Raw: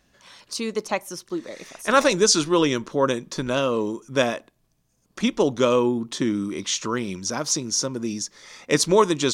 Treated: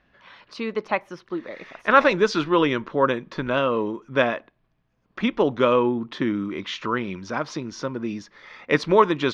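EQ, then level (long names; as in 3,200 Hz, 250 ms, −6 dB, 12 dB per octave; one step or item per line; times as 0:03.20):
high-frequency loss of the air 330 metres
parametric band 1,800 Hz +7.5 dB 2.5 octaves
−1.0 dB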